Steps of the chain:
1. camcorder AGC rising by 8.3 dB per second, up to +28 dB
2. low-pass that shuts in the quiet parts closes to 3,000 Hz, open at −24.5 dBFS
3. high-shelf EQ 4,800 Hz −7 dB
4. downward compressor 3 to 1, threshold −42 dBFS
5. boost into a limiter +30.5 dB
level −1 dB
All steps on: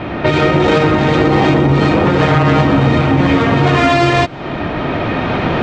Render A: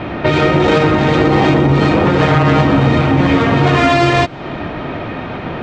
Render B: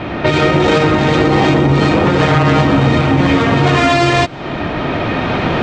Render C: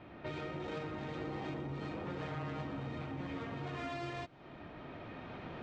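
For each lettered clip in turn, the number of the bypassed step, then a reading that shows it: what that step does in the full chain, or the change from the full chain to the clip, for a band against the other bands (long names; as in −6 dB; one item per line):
1, change in momentary loudness spread +6 LU
3, 4 kHz band +2.0 dB
5, change in crest factor +3.5 dB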